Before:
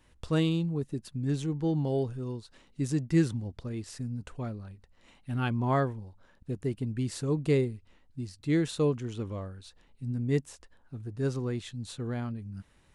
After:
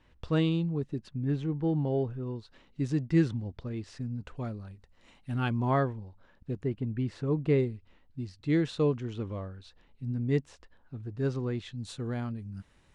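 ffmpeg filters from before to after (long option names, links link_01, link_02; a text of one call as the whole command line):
ffmpeg -i in.wav -af "asetnsamples=nb_out_samples=441:pad=0,asendcmd='1.09 lowpass f 2500;2.36 lowpass f 4200;4.37 lowpass f 8900;5.7 lowpass f 4300;6.64 lowpass f 2500;7.58 lowpass f 4400;11.78 lowpass f 9000',lowpass=4000" out.wav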